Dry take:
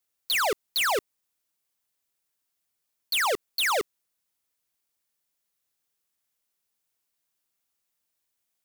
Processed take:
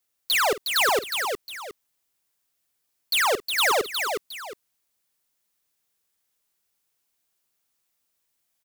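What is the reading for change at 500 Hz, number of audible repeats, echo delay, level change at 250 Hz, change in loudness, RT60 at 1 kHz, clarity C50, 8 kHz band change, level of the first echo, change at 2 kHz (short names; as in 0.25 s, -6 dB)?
+4.5 dB, 3, 49 ms, +4.0 dB, +3.0 dB, none, none, +4.0 dB, -15.0 dB, +4.5 dB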